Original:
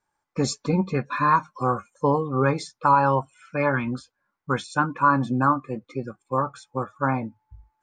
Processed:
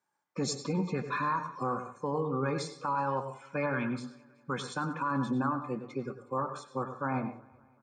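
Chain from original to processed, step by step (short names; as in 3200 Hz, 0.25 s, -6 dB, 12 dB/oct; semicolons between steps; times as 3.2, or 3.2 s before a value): HPF 130 Hz 24 dB/oct; limiter -18.5 dBFS, peak gain reduction 11.5 dB; feedback echo 0.188 s, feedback 59%, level -24 dB; on a send at -9 dB: reverb RT60 0.40 s, pre-delay 90 ms; on the sum: gain -4.5 dB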